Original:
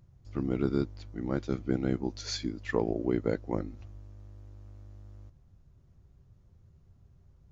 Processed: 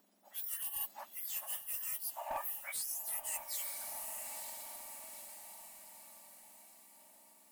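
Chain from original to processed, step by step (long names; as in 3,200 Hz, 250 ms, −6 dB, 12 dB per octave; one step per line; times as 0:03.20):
frequency axis turned over on the octave scale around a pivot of 2,000 Hz
asymmetric clip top −30.5 dBFS
feedback delay with all-pass diffusion 945 ms, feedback 50%, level −13.5 dB
reversed playback
downward compressor 6 to 1, threshold −45 dBFS, peak gain reduction 14 dB
reversed playback
level +7.5 dB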